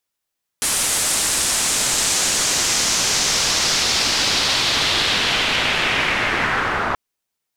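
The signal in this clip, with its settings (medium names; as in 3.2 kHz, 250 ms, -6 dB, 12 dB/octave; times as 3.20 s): swept filtered noise white, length 6.33 s lowpass, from 9.4 kHz, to 1.2 kHz, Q 1.8, linear, gain ramp +6.5 dB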